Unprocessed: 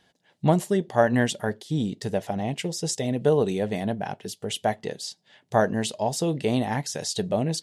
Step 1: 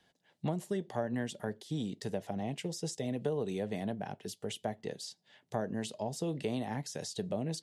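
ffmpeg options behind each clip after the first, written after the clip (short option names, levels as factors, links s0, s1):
-filter_complex "[0:a]acrossover=split=120|510[s0][s1][s2];[s0]acompressor=threshold=0.00562:ratio=4[s3];[s1]acompressor=threshold=0.0447:ratio=4[s4];[s2]acompressor=threshold=0.02:ratio=4[s5];[s3][s4][s5]amix=inputs=3:normalize=0,volume=0.473"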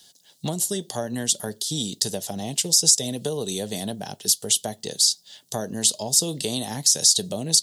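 -af "aexciter=amount=6.3:drive=8.5:freq=3400,volume=1.88"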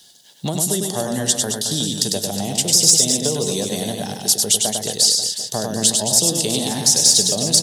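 -filter_complex "[0:a]asoftclip=type=tanh:threshold=0.596,asplit=2[s0][s1];[s1]aecho=0:1:100|220|364|536.8|744.2:0.631|0.398|0.251|0.158|0.1[s2];[s0][s2]amix=inputs=2:normalize=0,volume=1.58"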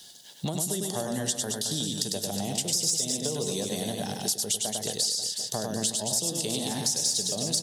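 -af "acompressor=threshold=0.0282:ratio=2.5"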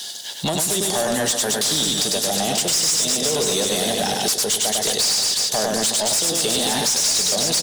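-filter_complex "[0:a]asplit=2[s0][s1];[s1]highpass=f=720:p=1,volume=15.8,asoftclip=type=tanh:threshold=0.251[s2];[s0][s2]amix=inputs=2:normalize=0,lowpass=f=7800:p=1,volume=0.501,aecho=1:1:1061:0.141,volume=1.12"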